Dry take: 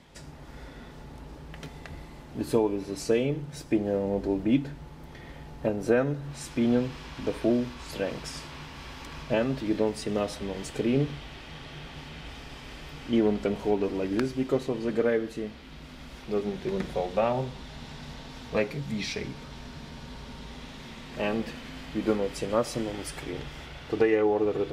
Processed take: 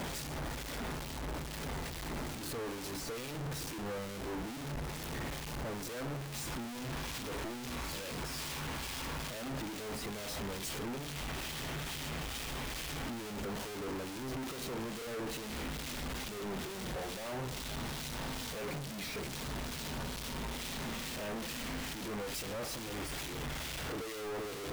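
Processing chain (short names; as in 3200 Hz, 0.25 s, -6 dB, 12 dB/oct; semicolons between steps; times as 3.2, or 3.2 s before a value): infinite clipping; harmonic tremolo 2.3 Hz, depth 50%, crossover 2200 Hz; gain -7.5 dB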